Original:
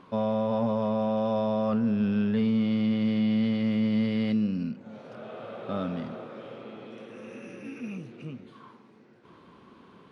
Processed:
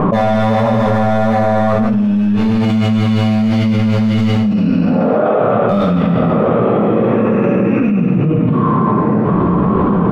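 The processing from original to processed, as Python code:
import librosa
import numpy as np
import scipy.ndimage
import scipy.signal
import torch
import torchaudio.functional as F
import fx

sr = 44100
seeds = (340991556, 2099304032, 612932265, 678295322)

p1 = fx.highpass(x, sr, hz=280.0, slope=12, at=(4.51, 5.38))
p2 = fx.env_lowpass(p1, sr, base_hz=810.0, full_db=-21.5)
p3 = fx.lowpass(p2, sr, hz=1500.0, slope=12, at=(0.86, 1.8))
p4 = fx.level_steps(p3, sr, step_db=18)
p5 = p3 + F.gain(torch.from_numpy(p4), 0.0).numpy()
p6 = np.clip(p5, -10.0 ** (-21.0 / 20.0), 10.0 ** (-21.0 / 20.0))
p7 = p6 + fx.echo_thinned(p6, sr, ms=140, feedback_pct=36, hz=420.0, wet_db=-6.5, dry=0)
p8 = fx.room_shoebox(p7, sr, seeds[0], volume_m3=700.0, walls='furnished', distance_m=6.0)
p9 = fx.env_flatten(p8, sr, amount_pct=100)
y = F.gain(torch.from_numpy(p9), -5.5).numpy()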